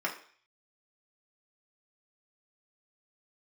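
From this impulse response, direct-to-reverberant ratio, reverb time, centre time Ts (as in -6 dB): -2.5 dB, 0.50 s, 17 ms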